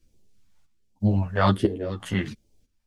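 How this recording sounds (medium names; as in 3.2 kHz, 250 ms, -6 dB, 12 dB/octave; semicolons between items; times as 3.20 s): phasing stages 2, 1.3 Hz, lowest notch 320–1400 Hz; chopped level 1 Hz, depth 65%, duty 65%; a shimmering, thickened sound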